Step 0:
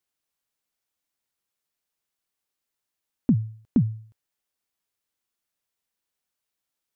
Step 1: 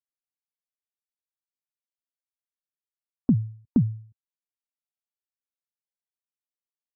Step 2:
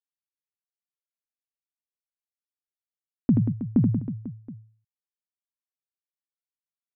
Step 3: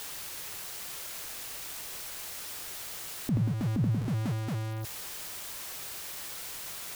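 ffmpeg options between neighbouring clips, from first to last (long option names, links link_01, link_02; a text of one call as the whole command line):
ffmpeg -i in.wav -af "afftdn=noise_reduction=25:noise_floor=-50" out.wav
ffmpeg -i in.wav -filter_complex "[0:a]agate=range=-33dB:threshold=-47dB:ratio=3:detection=peak,lowpass=frequency=1000:poles=1,asplit=2[link_01][link_02];[link_02]aecho=0:1:80|184|319.2|495|723.4:0.631|0.398|0.251|0.158|0.1[link_03];[link_01][link_03]amix=inputs=2:normalize=0" out.wav
ffmpeg -i in.wav -af "aeval=exprs='val(0)+0.5*0.0266*sgn(val(0))':channel_layout=same,equalizer=frequency=240:width=2.7:gain=-7,alimiter=limit=-24dB:level=0:latency=1:release=272,volume=3dB" out.wav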